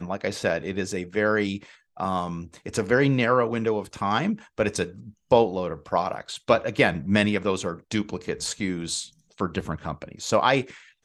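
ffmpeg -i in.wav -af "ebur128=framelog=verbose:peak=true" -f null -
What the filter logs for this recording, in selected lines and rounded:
Integrated loudness:
  I:         -25.4 LUFS
  Threshold: -35.6 LUFS
Loudness range:
  LRA:         3.4 LU
  Threshold: -45.3 LUFS
  LRA low:   -27.5 LUFS
  LRA high:  -24.1 LUFS
True peak:
  Peak:       -4.0 dBFS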